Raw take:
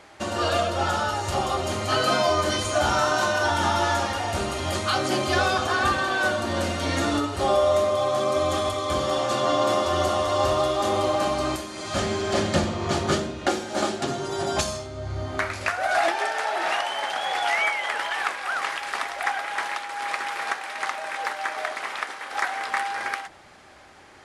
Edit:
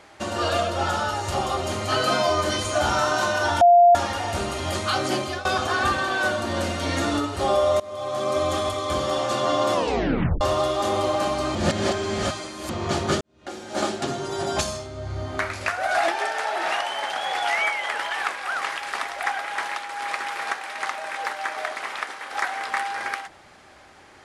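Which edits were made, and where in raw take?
3.61–3.95 bleep 698 Hz -9.5 dBFS
5.14–5.45 fade out, to -18 dB
7.8–8.34 fade in, from -21.5 dB
9.74 tape stop 0.67 s
11.55–12.7 reverse
13.21–13.79 fade in quadratic

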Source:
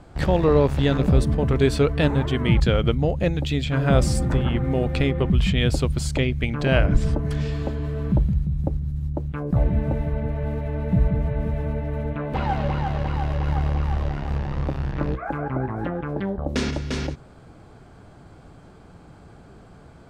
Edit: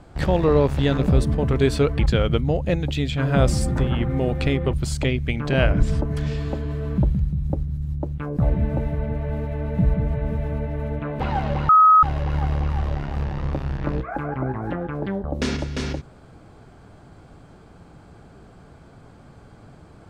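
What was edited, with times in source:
1.99–2.53 cut
5.27–5.87 cut
12.83–13.17 bleep 1270 Hz -9 dBFS

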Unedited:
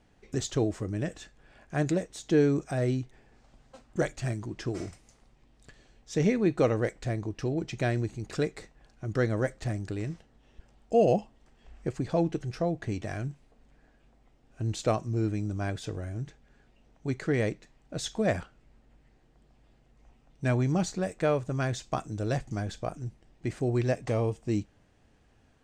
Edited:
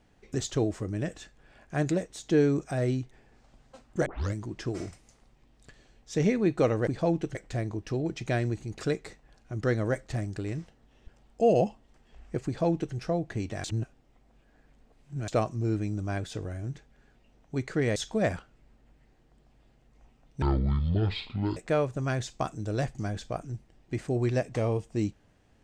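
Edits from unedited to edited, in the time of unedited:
4.06 tape start 0.28 s
11.98–12.46 copy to 6.87
13.16–14.8 reverse
17.48–18 cut
20.46–21.09 speed 55%

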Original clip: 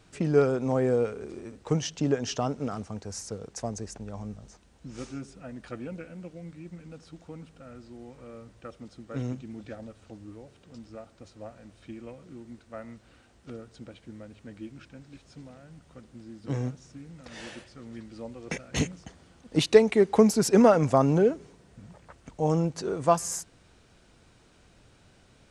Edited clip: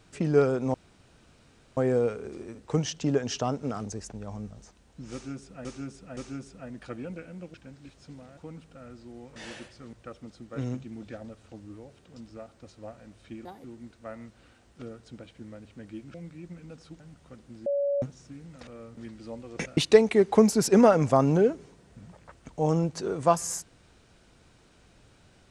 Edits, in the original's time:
0.74 insert room tone 1.03 s
2.83–3.72 cut
4.99–5.51 loop, 3 plays
6.36–7.22 swap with 14.82–15.65
8.21–8.51 swap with 17.32–17.89
12.03–12.32 speed 152%
16.31–16.67 bleep 566 Hz -23.5 dBFS
18.69–19.58 cut

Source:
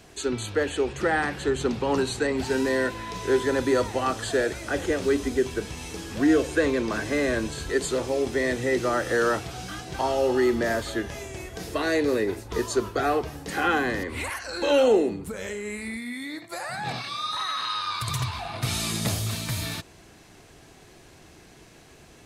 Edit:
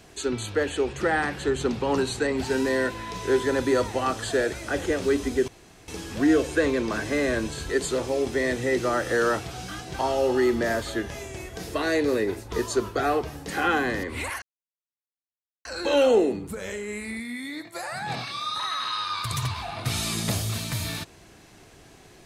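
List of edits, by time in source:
5.48–5.88 room tone
14.42 insert silence 1.23 s

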